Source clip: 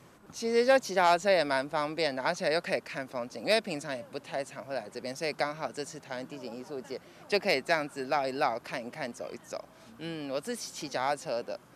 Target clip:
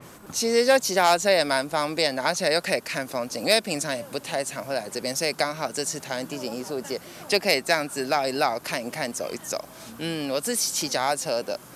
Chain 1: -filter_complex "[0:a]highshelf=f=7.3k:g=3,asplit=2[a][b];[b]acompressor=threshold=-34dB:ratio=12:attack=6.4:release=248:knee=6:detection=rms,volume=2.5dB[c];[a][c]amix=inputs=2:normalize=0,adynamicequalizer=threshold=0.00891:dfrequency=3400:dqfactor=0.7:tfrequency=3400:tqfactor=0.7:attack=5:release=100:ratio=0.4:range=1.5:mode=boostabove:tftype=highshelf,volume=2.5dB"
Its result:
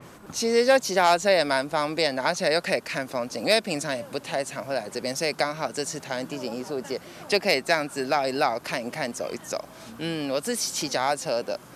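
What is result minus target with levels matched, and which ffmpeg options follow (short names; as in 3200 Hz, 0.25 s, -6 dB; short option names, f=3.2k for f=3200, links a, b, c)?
8000 Hz band -3.5 dB
-filter_complex "[0:a]highshelf=f=7.3k:g=12,asplit=2[a][b];[b]acompressor=threshold=-34dB:ratio=12:attack=6.4:release=248:knee=6:detection=rms,volume=2.5dB[c];[a][c]amix=inputs=2:normalize=0,adynamicequalizer=threshold=0.00891:dfrequency=3400:dqfactor=0.7:tfrequency=3400:tqfactor=0.7:attack=5:release=100:ratio=0.4:range=1.5:mode=boostabove:tftype=highshelf,volume=2.5dB"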